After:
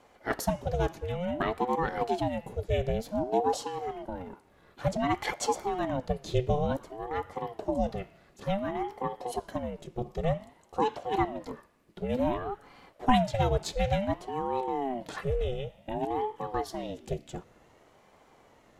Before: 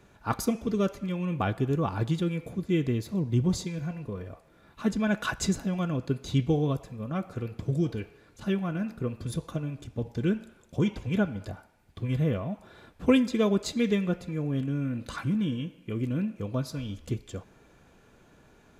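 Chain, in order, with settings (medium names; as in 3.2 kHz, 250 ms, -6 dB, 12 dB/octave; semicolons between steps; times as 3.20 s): ring modulator with a swept carrier 450 Hz, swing 45%, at 0.55 Hz; trim +1 dB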